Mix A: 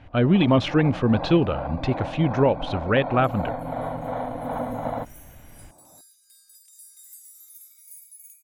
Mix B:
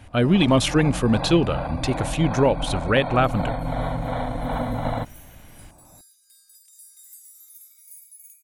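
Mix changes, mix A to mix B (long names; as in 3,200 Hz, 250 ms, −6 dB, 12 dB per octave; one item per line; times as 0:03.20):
speech: remove high-frequency loss of the air 240 metres
first sound: remove resonant band-pass 540 Hz, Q 0.59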